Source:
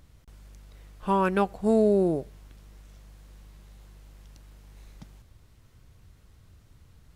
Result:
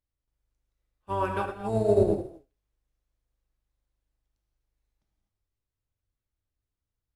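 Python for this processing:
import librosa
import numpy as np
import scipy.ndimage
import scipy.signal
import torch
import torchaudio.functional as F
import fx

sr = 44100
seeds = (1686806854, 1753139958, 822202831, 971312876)

p1 = fx.octave_divider(x, sr, octaves=1, level_db=-3.0)
p2 = fx.peak_eq(p1, sr, hz=170.0, db=-10.5, octaves=0.89)
p3 = p2 + fx.echo_single(p2, sr, ms=109, db=-19.5, dry=0)
p4 = fx.rev_gated(p3, sr, seeds[0], gate_ms=280, shape='flat', drr_db=-0.5)
y = fx.upward_expand(p4, sr, threshold_db=-40.0, expansion=2.5)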